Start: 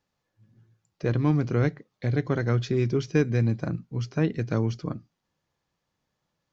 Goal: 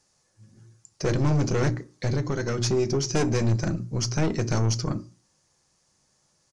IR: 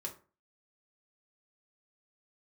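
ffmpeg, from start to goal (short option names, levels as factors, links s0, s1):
-filter_complex "[0:a]bandreject=f=60:t=h:w=6,bandreject=f=120:t=h:w=6,bandreject=f=180:t=h:w=6,bandreject=f=240:t=h:w=6,bandreject=f=300:t=h:w=6,bandreject=f=360:t=h:w=6,asettb=1/sr,asplit=3[s0][s1][s2];[s0]atrim=end=2.084[s3];[s1]atrim=start=2.08:end=3.09,asetpts=PTS-STARTPTS,afade=t=in:d=0.004:c=qsin,afade=t=out:st=1.006:d=0.004:c=qsin,acompressor=threshold=0.0447:ratio=6[s4];[s2]atrim=start=3.086[s5];[s3][s4]acrossfade=d=0.004:c1=hsin:c2=qsin[s6];[s6][s5]acrossfade=d=0.004:c1=qsin:c2=hsin,aexciter=amount=7.2:drive=2.4:freq=4900,aeval=exprs='(tanh(25.1*val(0)+0.35)-tanh(0.35))/25.1':c=same,asplit=2[s7][s8];[1:a]atrim=start_sample=2205[s9];[s8][s9]afir=irnorm=-1:irlink=0,volume=0.473[s10];[s7][s10]amix=inputs=2:normalize=0,aresample=22050,aresample=44100,volume=2.11"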